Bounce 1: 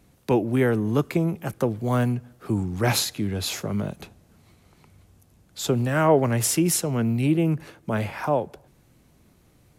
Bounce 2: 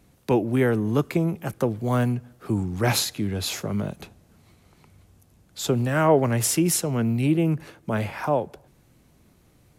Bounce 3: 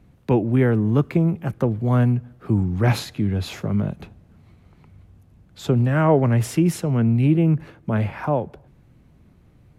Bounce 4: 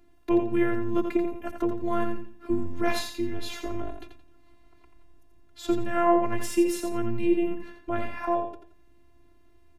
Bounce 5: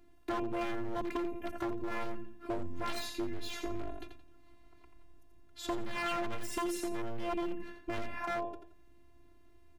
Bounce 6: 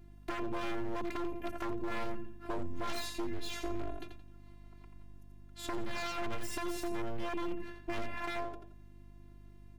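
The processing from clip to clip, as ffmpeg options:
-af anull
-af "bass=f=250:g=7,treble=f=4000:g=-12"
-af "afftfilt=real='hypot(re,im)*cos(PI*b)':imag='0':win_size=512:overlap=0.75,aecho=1:1:86|172|258:0.447|0.121|0.0326"
-af "aeval=exprs='0.0794*(abs(mod(val(0)/0.0794+3,4)-2)-1)':c=same,acompressor=threshold=0.0355:ratio=6,volume=0.75"
-af "aeval=exprs='max(val(0),0)':c=same,aeval=exprs='val(0)+0.00178*(sin(2*PI*50*n/s)+sin(2*PI*2*50*n/s)/2+sin(2*PI*3*50*n/s)/3+sin(2*PI*4*50*n/s)/4+sin(2*PI*5*50*n/s)/5)':c=same,volume=1.12"

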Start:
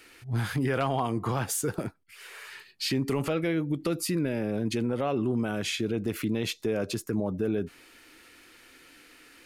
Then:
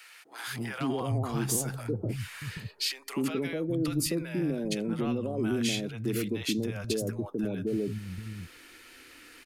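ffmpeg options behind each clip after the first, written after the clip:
-filter_complex "[0:a]asplit=2[s0][s1];[s1]alimiter=limit=0.0668:level=0:latency=1,volume=1.26[s2];[s0][s2]amix=inputs=2:normalize=0,acrossover=split=160|700[s3][s4][s5];[s4]adelay=250[s6];[s3]adelay=780[s7];[s7][s6][s5]amix=inputs=3:normalize=0,acrossover=split=450|3000[s8][s9][s10];[s9]acompressor=threshold=0.00794:ratio=1.5[s11];[s8][s11][s10]amix=inputs=3:normalize=0,volume=0.596"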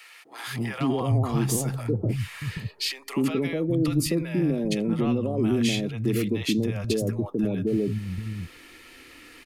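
-af "bass=f=250:g=3,treble=f=4000:g=-4,bandreject=f=1500:w=7.5,volume=1.68"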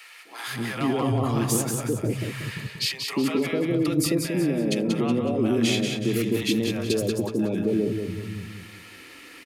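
-filter_complex "[0:a]highpass=f=200:p=1,asplit=2[s0][s1];[s1]aecho=0:1:185|370|555|740|925:0.531|0.202|0.0767|0.0291|0.0111[s2];[s0][s2]amix=inputs=2:normalize=0,volume=1.26"

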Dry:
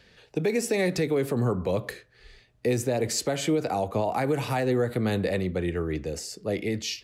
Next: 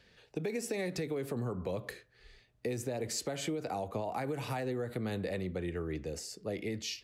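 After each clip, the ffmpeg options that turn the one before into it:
-af "acompressor=threshold=0.0562:ratio=6,volume=0.473"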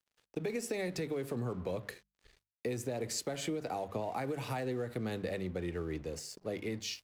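-af "aeval=exprs='sgn(val(0))*max(abs(val(0))-0.0015,0)':c=same,bandreject=f=50:t=h:w=6,bandreject=f=100:t=h:w=6,bandreject=f=150:t=h:w=6,bandreject=f=200:t=h:w=6"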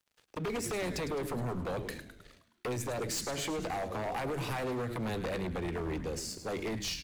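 -filter_complex "[0:a]asplit=2[s0][s1];[s1]asplit=6[s2][s3][s4][s5][s6][s7];[s2]adelay=105,afreqshift=-130,volume=0.251[s8];[s3]adelay=210,afreqshift=-260,volume=0.138[s9];[s4]adelay=315,afreqshift=-390,volume=0.0759[s10];[s5]adelay=420,afreqshift=-520,volume=0.0417[s11];[s6]adelay=525,afreqshift=-650,volume=0.0229[s12];[s7]adelay=630,afreqshift=-780,volume=0.0126[s13];[s8][s9][s10][s11][s12][s13]amix=inputs=6:normalize=0[s14];[s0][s14]amix=inputs=2:normalize=0,aeval=exprs='0.0668*sin(PI/2*2.82*val(0)/0.0668)':c=same,volume=0.447"

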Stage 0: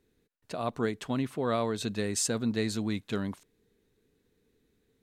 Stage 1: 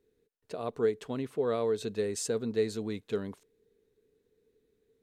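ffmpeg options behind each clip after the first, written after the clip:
-af "equalizer=f=440:t=o:w=0.47:g=12.5,volume=0.473"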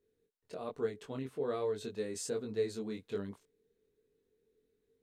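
-af "flanger=delay=19.5:depth=3.7:speed=1.2,volume=0.75"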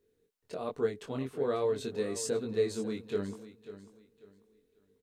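-af "aecho=1:1:543|1086|1629:0.2|0.0559|0.0156,volume=1.68"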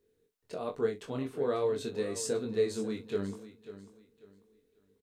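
-filter_complex "[0:a]asplit=2[s0][s1];[s1]adelay=41,volume=0.224[s2];[s0][s2]amix=inputs=2:normalize=0"

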